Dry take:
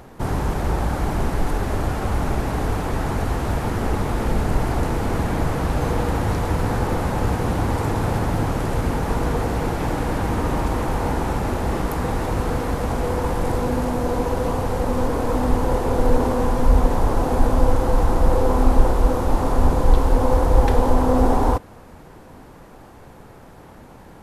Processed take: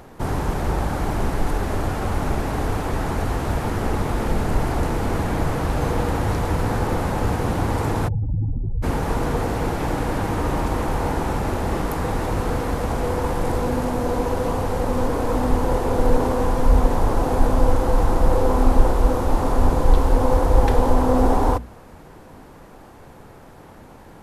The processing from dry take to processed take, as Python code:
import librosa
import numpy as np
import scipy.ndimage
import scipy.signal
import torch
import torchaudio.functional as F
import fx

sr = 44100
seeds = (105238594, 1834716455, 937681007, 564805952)

y = fx.spec_expand(x, sr, power=3.7, at=(8.07, 8.82), fade=0.02)
y = fx.hum_notches(y, sr, base_hz=60, count=4)